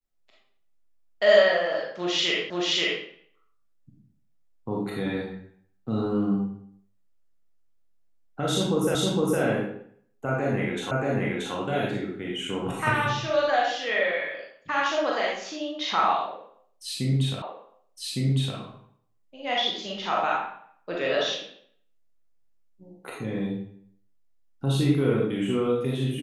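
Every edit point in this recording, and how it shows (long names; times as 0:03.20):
0:02.50: the same again, the last 0.53 s
0:08.95: the same again, the last 0.46 s
0:10.91: the same again, the last 0.63 s
0:17.42: the same again, the last 1.16 s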